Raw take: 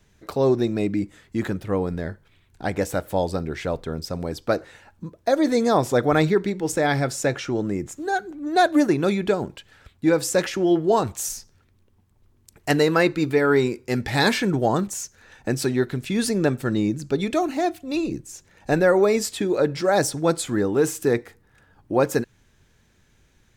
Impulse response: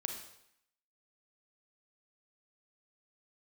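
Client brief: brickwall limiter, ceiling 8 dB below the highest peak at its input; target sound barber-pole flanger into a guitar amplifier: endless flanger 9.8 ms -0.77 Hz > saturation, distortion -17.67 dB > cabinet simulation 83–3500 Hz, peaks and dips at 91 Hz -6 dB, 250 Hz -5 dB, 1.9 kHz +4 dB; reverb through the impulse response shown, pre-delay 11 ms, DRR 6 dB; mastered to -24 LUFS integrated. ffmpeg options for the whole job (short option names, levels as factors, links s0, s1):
-filter_complex "[0:a]alimiter=limit=0.188:level=0:latency=1,asplit=2[s0][s1];[1:a]atrim=start_sample=2205,adelay=11[s2];[s1][s2]afir=irnorm=-1:irlink=0,volume=0.473[s3];[s0][s3]amix=inputs=2:normalize=0,asplit=2[s4][s5];[s5]adelay=9.8,afreqshift=-0.77[s6];[s4][s6]amix=inputs=2:normalize=1,asoftclip=threshold=0.133,highpass=83,equalizer=f=91:t=q:w=4:g=-6,equalizer=f=250:t=q:w=4:g=-5,equalizer=f=1900:t=q:w=4:g=4,lowpass=f=3500:w=0.5412,lowpass=f=3500:w=1.3066,volume=2"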